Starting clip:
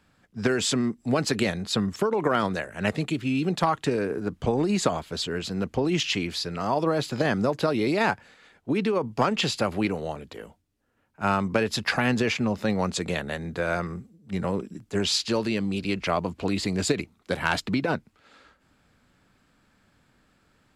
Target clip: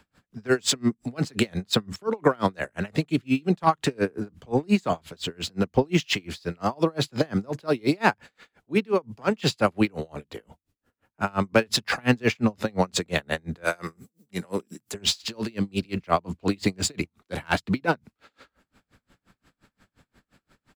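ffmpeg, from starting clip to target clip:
ffmpeg -i in.wav -filter_complex "[0:a]asettb=1/sr,asplit=3[link_01][link_02][link_03];[link_01]atrim=end=13.644[link_04];[link_02]atrim=start=13.64:end=14.94,asetpts=PTS-STARTPTS,afade=type=in:duration=0.004:curve=qsin,afade=type=out:start_time=1.296:duration=0.004:curve=qsin,aemphasis=mode=production:type=bsi[link_05];[link_03]atrim=start=14.936[link_06];[link_04][link_05]acrossfade=duration=0.004:curve1=hsin:curve2=qsin[link_07];[link_07][link_06]acrossfade=duration=0.004:curve1=qsin:curve2=hsin,acrossover=split=190|2800[link_08][link_09][link_10];[link_08]asplit=2[link_11][link_12];[link_12]adelay=49,volume=-12.5dB[link_13];[link_11][link_13]amix=inputs=2:normalize=0[link_14];[link_10]acrusher=bits=4:mode=log:mix=0:aa=0.000001[link_15];[link_14][link_09][link_15]amix=inputs=3:normalize=0,aeval=exprs='val(0)*pow(10,-34*(0.5-0.5*cos(2*PI*5.7*n/s))/20)':channel_layout=same,volume=7dB" out.wav

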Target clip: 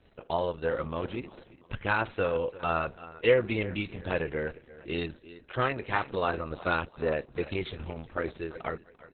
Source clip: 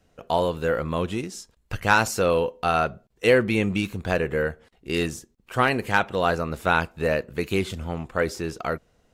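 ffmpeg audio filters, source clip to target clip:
ffmpeg -i in.wav -filter_complex "[0:a]asplit=3[link_01][link_02][link_03];[link_01]afade=type=out:start_time=0.74:duration=0.02[link_04];[link_02]lowpass=frequency=3700:width=0.5412,lowpass=frequency=3700:width=1.3066,afade=type=in:start_time=0.74:duration=0.02,afade=type=out:start_time=2.74:duration=0.02[link_05];[link_03]afade=type=in:start_time=2.74:duration=0.02[link_06];[link_04][link_05][link_06]amix=inputs=3:normalize=0,bandreject=frequency=730:width=12,agate=range=-33dB:threshold=-50dB:ratio=3:detection=peak,equalizer=frequency=200:width_type=o:width=0.21:gain=-7.5,acompressor=mode=upward:threshold=-33dB:ratio=2.5,aecho=1:1:343|686|1029:0.15|0.0524|0.0183,volume=-4.5dB" -ar 48000 -c:a libopus -b:a 6k out.opus

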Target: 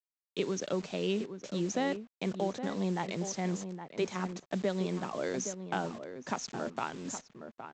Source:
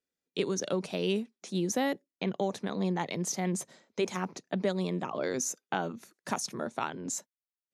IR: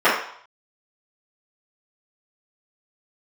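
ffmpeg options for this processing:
-filter_complex "[0:a]highshelf=frequency=5400:gain=-5.5,aresample=16000,acrusher=bits=7:mix=0:aa=0.000001,aresample=44100,asplit=2[link_01][link_02];[link_02]adelay=816.3,volume=-9dB,highshelf=frequency=4000:gain=-18.4[link_03];[link_01][link_03]amix=inputs=2:normalize=0,volume=-2dB"

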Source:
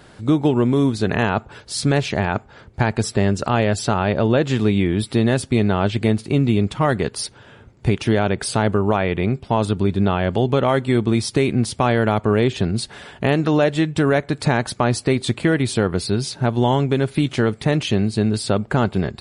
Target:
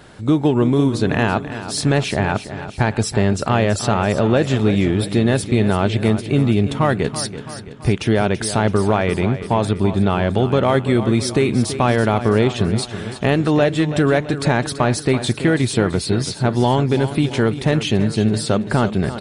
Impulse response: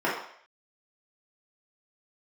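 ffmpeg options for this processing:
-filter_complex "[0:a]bandreject=frequency=4700:width=23,asplit=2[link_01][link_02];[link_02]asoftclip=type=tanh:threshold=-20dB,volume=-10dB[link_03];[link_01][link_03]amix=inputs=2:normalize=0,aecho=1:1:332|664|996|1328|1660|1992:0.251|0.133|0.0706|0.0374|0.0198|0.0105"

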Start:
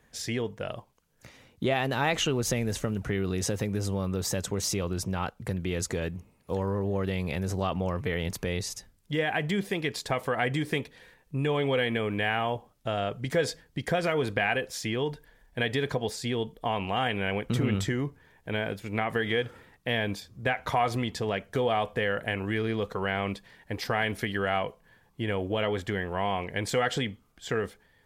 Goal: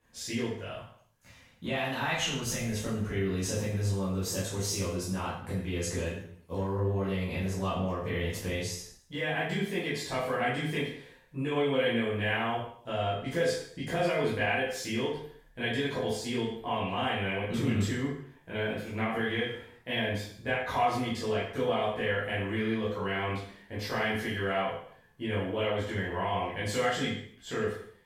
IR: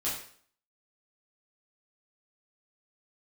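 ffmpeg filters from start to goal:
-filter_complex "[0:a]asettb=1/sr,asplit=3[link_01][link_02][link_03];[link_01]atrim=end=0.564[link_04];[link_02]atrim=start=0.56:end=2.7,asetpts=PTS-STARTPTS,afade=type=in:duration=0.004:curve=qsin,afade=type=out:start_time=2.136:duration=0.004:curve=qsin,equalizer=frequency=380:width=1.2:gain=-9[link_05];[link_03]atrim=start=2.696[link_06];[link_04][link_05]acrossfade=duration=0.004:curve1=hsin:curve2=qsin[link_07];[link_07][link_06]acrossfade=duration=0.004:curve1=qsin:curve2=hsin[link_08];[1:a]atrim=start_sample=2205,afade=type=out:start_time=0.38:duration=0.01,atrim=end_sample=17199,asetrate=36603,aresample=44100[link_09];[link_08][link_09]afir=irnorm=-1:irlink=0,volume=-9dB"

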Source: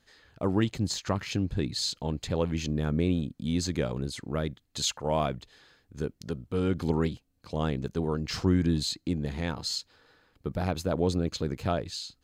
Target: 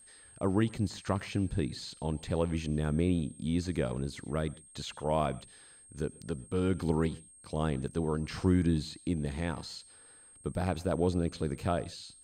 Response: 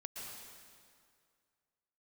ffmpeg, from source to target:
-filter_complex "[0:a]acrossover=split=2600[link_01][link_02];[link_02]acompressor=threshold=-43dB:ratio=4:attack=1:release=60[link_03];[link_01][link_03]amix=inputs=2:normalize=0,aeval=exprs='val(0)+0.00251*sin(2*PI*8500*n/s)':channel_layout=same,asplit=2[link_04][link_05];[1:a]atrim=start_sample=2205,afade=type=out:start_time=0.22:duration=0.01,atrim=end_sample=10143,asetrate=52920,aresample=44100[link_06];[link_05][link_06]afir=irnorm=-1:irlink=0,volume=-12dB[link_07];[link_04][link_07]amix=inputs=2:normalize=0,volume=-3dB"

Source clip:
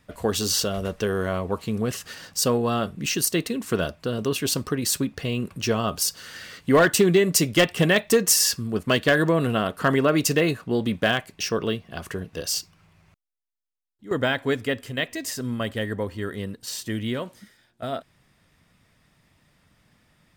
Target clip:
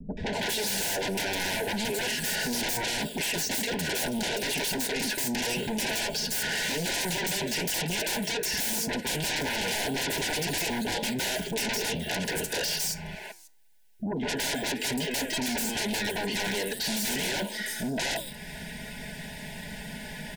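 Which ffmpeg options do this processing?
ffmpeg -i in.wav -filter_complex "[0:a]acrossover=split=820|2300[link_01][link_02][link_03];[link_01]acompressor=threshold=-37dB:ratio=4[link_04];[link_02]acompressor=threshold=-47dB:ratio=4[link_05];[link_03]acompressor=threshold=-45dB:ratio=4[link_06];[link_04][link_05][link_06]amix=inputs=3:normalize=0,aecho=1:1:4.7:0.87,acrossover=split=330|5500[link_07][link_08][link_09];[link_08]adelay=170[link_10];[link_09]adelay=330[link_11];[link_07][link_10][link_11]amix=inputs=3:normalize=0,asplit=2[link_12][link_13];[link_13]acompressor=threshold=-53dB:ratio=6,volume=-2.5dB[link_14];[link_12][link_14]amix=inputs=2:normalize=0,flanger=delay=4.5:depth=7.7:regen=-86:speed=1:shape=triangular,acrossover=split=340|6800[link_15][link_16][link_17];[link_15]alimiter=level_in=21.5dB:limit=-24dB:level=0:latency=1:release=251,volume=-21.5dB[link_18];[link_18][link_16][link_17]amix=inputs=3:normalize=0,aeval=exprs='0.0376*sin(PI/2*6.31*val(0)/0.0376)':channel_layout=same,asuperstop=centerf=1200:order=20:qfactor=2.9,equalizer=frequency=66:width_type=o:width=2.3:gain=-4.5,volume=2.5dB" out.wav

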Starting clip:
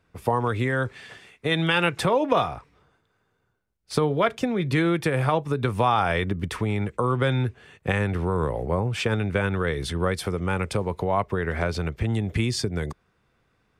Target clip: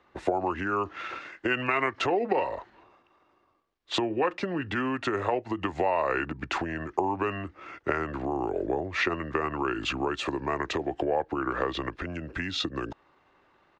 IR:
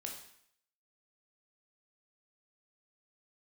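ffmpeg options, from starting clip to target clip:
-filter_complex "[0:a]asetrate=34006,aresample=44100,atempo=1.29684,acompressor=threshold=-30dB:ratio=5,acrossover=split=270 5000:gain=0.158 1 0.0891[link_01][link_02][link_03];[link_01][link_02][link_03]amix=inputs=3:normalize=0,volume=8dB"

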